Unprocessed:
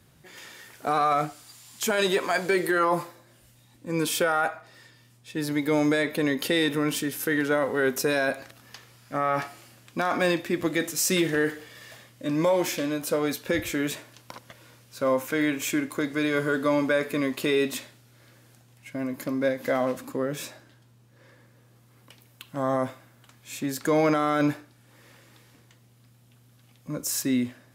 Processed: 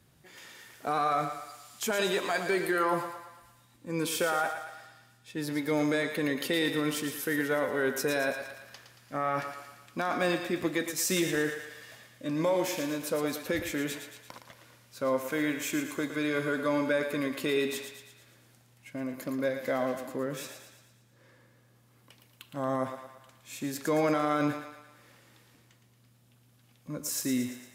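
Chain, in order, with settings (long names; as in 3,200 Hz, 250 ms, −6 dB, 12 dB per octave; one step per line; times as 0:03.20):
feedback echo with a high-pass in the loop 114 ms, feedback 55%, high-pass 440 Hz, level −7.5 dB
level −5 dB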